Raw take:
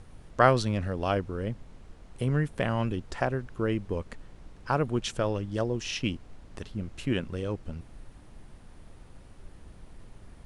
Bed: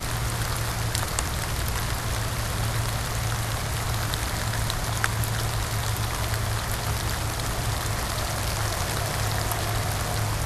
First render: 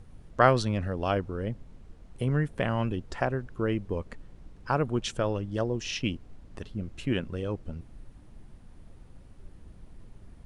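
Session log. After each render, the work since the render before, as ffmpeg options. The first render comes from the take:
-af "afftdn=nr=6:nf=-51"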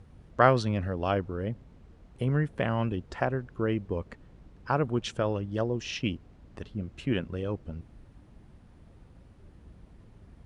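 -af "highpass=41,highshelf=f=7300:g=-11"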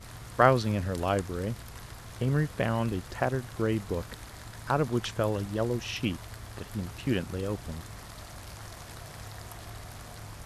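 -filter_complex "[1:a]volume=0.133[s0];[0:a][s0]amix=inputs=2:normalize=0"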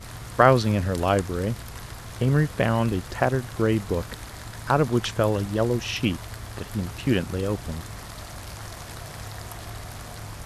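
-af "volume=2,alimiter=limit=0.794:level=0:latency=1"

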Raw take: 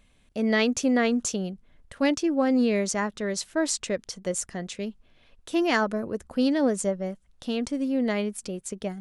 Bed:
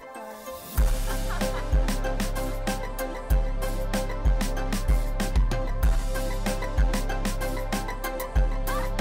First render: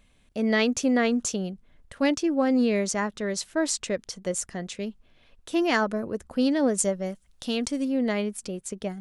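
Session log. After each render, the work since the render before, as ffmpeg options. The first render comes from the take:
-filter_complex "[0:a]asettb=1/sr,asplit=3[s0][s1][s2];[s0]atrim=end=6.784[s3];[s1]atrim=start=6.78:end=7.85,asetpts=PTS-STARTPTS,afade=t=in:d=0.004:c=qsin,afade=t=out:st=1.066:d=0.004:c=qsin,highshelf=f=2700:g=8[s4];[s2]atrim=start=7.846[s5];[s3][s4]acrossfade=d=0.004:c1=hsin:c2=qsin[s6];[s6][s5]acrossfade=d=0.004:c1=qsin:c2=hsin"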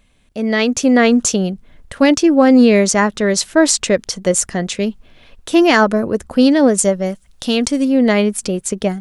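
-af "dynaudnorm=f=560:g=3:m=2.99,alimiter=level_in=1.78:limit=0.891:release=50:level=0:latency=1"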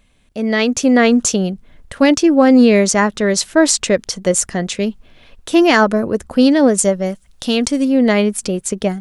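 -af anull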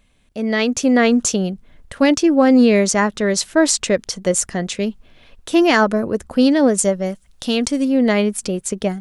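-af "volume=0.75"

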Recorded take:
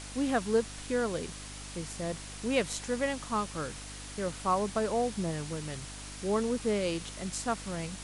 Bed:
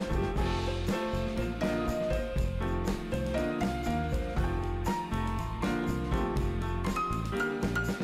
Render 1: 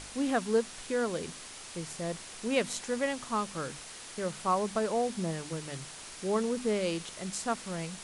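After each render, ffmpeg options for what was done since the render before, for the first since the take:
-af "bandreject=f=50:t=h:w=4,bandreject=f=100:t=h:w=4,bandreject=f=150:t=h:w=4,bandreject=f=200:t=h:w=4,bandreject=f=250:t=h:w=4,bandreject=f=300:t=h:w=4"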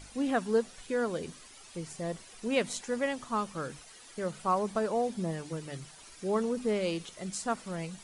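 -af "afftdn=nr=11:nf=-46"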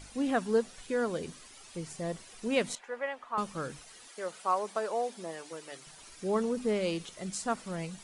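-filter_complex "[0:a]asettb=1/sr,asplit=3[s0][s1][s2];[s0]atrim=end=2.754[s3];[s1]atrim=start=2.75:end=3.38,asetpts=PTS-STARTPTS,afade=t=in:d=0.004:c=qsin,afade=t=out:st=0.626:d=0.004:c=qsin,acrossover=split=490 2700:gain=0.0708 1 0.0891[s4][s5][s6];[s4][s5][s6]amix=inputs=3:normalize=0[s7];[s2]atrim=start=3.376[s8];[s3][s7]acrossfade=d=0.004:c1=hsin:c2=qsin[s9];[s9][s8]acrossfade=d=0.004:c1=qsin:c2=hsin,asettb=1/sr,asplit=3[s10][s11][s12];[s10]atrim=end=4.084[s13];[s11]atrim=start=4.08:end=5.87,asetpts=PTS-STARTPTS,afade=t=in:d=0.004:c=qsin,afade=t=out:st=1.786:d=0.004:c=qsin,highpass=460[s14];[s12]atrim=start=5.866[s15];[s13][s14]acrossfade=d=0.004:c1=hsin:c2=qsin[s16];[s16][s15]acrossfade=d=0.004:c1=qsin:c2=hsin"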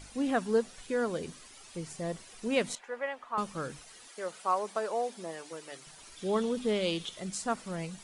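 -filter_complex "[0:a]asettb=1/sr,asplit=3[s0][s1][s2];[s0]atrim=end=6.164[s3];[s1]atrim=start=6.16:end=7.2,asetpts=PTS-STARTPTS,afade=t=in:d=0.004:c=qsin,afade=t=out:st=1.036:d=0.004:c=qsin,equalizer=f=3400:t=o:w=0.39:g=11.5[s4];[s2]atrim=start=7.196[s5];[s3][s4]acrossfade=d=0.004:c1=hsin:c2=qsin[s6];[s6][s5]acrossfade=d=0.004:c1=qsin:c2=hsin"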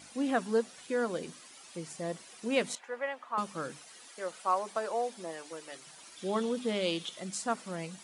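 -af "highpass=180,bandreject=f=420:w=12"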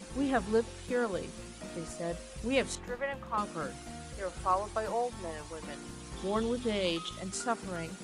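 -filter_complex "[1:a]volume=0.188[s0];[0:a][s0]amix=inputs=2:normalize=0"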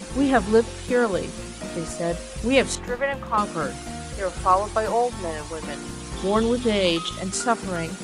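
-af "volume=3.35"

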